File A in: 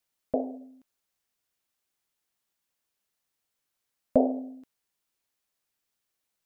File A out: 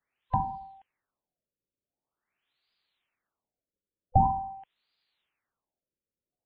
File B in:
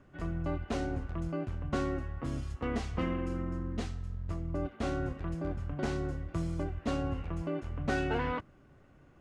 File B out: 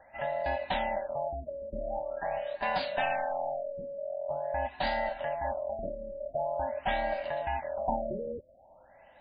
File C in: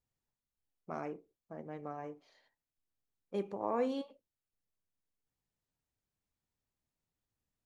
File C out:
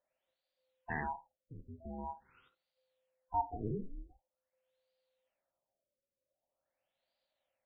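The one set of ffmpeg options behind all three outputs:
-af "afftfilt=real='real(if(lt(b,1008),b+24*(1-2*mod(floor(b/24),2)),b),0)':imag='imag(if(lt(b,1008),b+24*(1-2*mod(floor(b/24),2)),b),0)':win_size=2048:overlap=0.75,crystalizer=i=7:c=0,afftfilt=real='re*lt(b*sr/1024,560*pow(5000/560,0.5+0.5*sin(2*PI*0.45*pts/sr)))':imag='im*lt(b*sr/1024,560*pow(5000/560,0.5+0.5*sin(2*PI*0.45*pts/sr)))':win_size=1024:overlap=0.75"

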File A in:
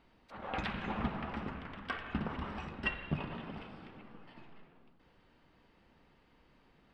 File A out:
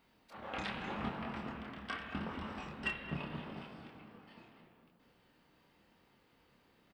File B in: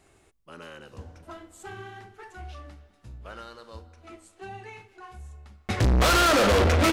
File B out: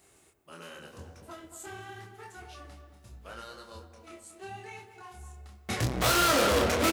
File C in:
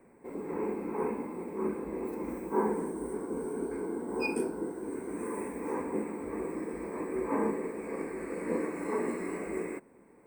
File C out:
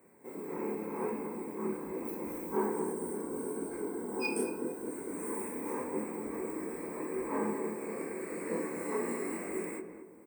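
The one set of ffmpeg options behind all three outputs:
-filter_complex "[0:a]highpass=f=88:p=1,aemphasis=mode=production:type=50kf,asoftclip=type=tanh:threshold=-17dB,flanger=delay=22.5:depth=7.1:speed=0.82,asplit=2[a][b];[b]adelay=226,lowpass=f=1.1k:p=1,volume=-7dB,asplit=2[c][d];[d]adelay=226,lowpass=f=1.1k:p=1,volume=0.4,asplit=2[e][f];[f]adelay=226,lowpass=f=1.1k:p=1,volume=0.4,asplit=2[g][h];[h]adelay=226,lowpass=f=1.1k:p=1,volume=0.4,asplit=2[i][j];[j]adelay=226,lowpass=f=1.1k:p=1,volume=0.4[k];[c][e][g][i][k]amix=inputs=5:normalize=0[l];[a][l]amix=inputs=2:normalize=0"

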